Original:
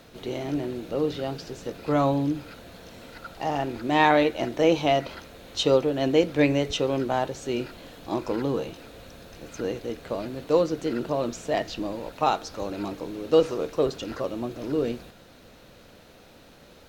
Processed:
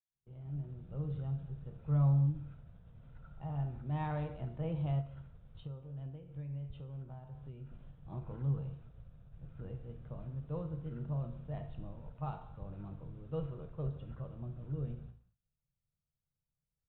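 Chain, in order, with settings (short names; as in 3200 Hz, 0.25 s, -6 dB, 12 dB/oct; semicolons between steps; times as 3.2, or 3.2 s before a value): opening faded in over 0.99 s; downsampling 8000 Hz; gate -45 dBFS, range -32 dB; non-linear reverb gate 0.28 s falling, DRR 6.5 dB; 5.01–7.72 compressor 6:1, threshold -31 dBFS, peak gain reduction 16 dB; EQ curve 140 Hz 0 dB, 280 Hz -25 dB, 1300 Hz -21 dB, 2000 Hz -29 dB; ending taper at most 250 dB/s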